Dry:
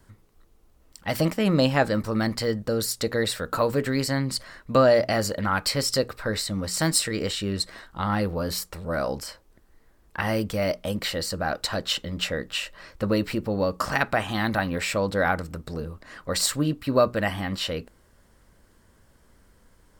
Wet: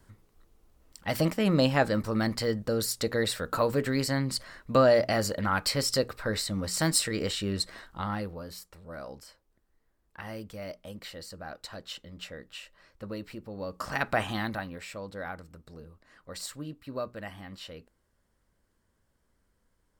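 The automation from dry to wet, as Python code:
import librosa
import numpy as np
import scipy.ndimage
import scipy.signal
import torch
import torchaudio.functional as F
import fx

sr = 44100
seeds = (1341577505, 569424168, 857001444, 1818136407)

y = fx.gain(x, sr, db=fx.line((7.87, -3.0), (8.5, -14.5), (13.52, -14.5), (14.22, -2.0), (14.81, -15.0)))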